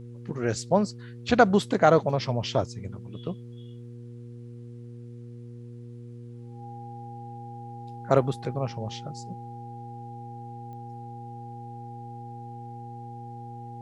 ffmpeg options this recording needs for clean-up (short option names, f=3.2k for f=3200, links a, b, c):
-af "adeclick=t=4,bandreject=f=119.5:t=h:w=4,bandreject=f=239:t=h:w=4,bandreject=f=358.5:t=h:w=4,bandreject=f=478:t=h:w=4,bandreject=f=810:w=30,agate=range=-21dB:threshold=-34dB"